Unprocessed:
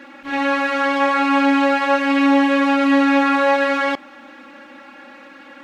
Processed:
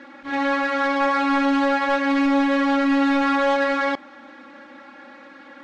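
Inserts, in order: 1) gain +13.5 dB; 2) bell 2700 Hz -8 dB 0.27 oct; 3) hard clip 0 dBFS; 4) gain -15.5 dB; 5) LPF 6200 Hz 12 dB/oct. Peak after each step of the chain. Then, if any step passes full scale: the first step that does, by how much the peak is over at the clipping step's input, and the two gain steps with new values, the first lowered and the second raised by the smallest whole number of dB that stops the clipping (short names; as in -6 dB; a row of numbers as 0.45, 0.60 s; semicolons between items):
+9.5, +9.5, 0.0, -15.5, -15.0 dBFS; step 1, 9.5 dB; step 1 +3.5 dB, step 4 -5.5 dB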